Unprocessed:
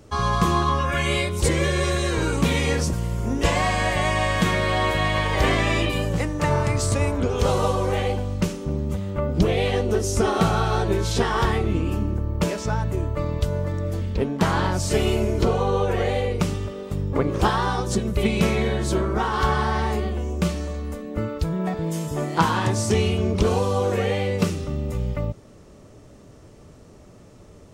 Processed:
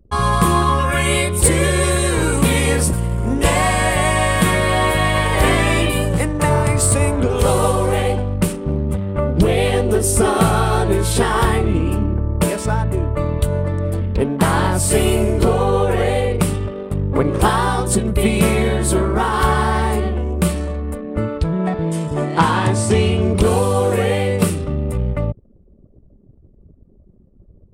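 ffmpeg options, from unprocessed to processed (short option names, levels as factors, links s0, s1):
-filter_complex "[0:a]asettb=1/sr,asplit=3[s0][s1][s2];[s0]atrim=end=13.014[s3];[s1]atrim=start=13.01:end=13.65,asetpts=PTS-STARTPTS,afade=t=in:d=0.004:c=qsin,afade=t=out:st=0.636:d=0.004:c=qsin,bandreject=f=5100:w=8.4[s4];[s2]atrim=start=13.646[s5];[s3][s4]acrossfade=d=0.004:c1=hsin:c2=qsin[s6];[s6][s5]acrossfade=d=0.004:c1=qsin:c2=hsin,asettb=1/sr,asplit=3[s7][s8][s9];[s7]atrim=end=21.374[s10];[s8]atrim=start=21.37:end=23.22,asetpts=PTS-STARTPTS,afade=t=in:d=0.004:c=qsin,afade=t=out:st=1.846:d=0.004:c=qsin,lowpass=6300[s11];[s9]atrim=start=23.216[s12];[s10][s11]acrossfade=d=0.004:c1=hsin:c2=qsin[s13];[s13][s12]acrossfade=d=0.004:c1=qsin:c2=hsin,anlmdn=1,highshelf=f=7600:t=q:w=3:g=7,acontrast=52"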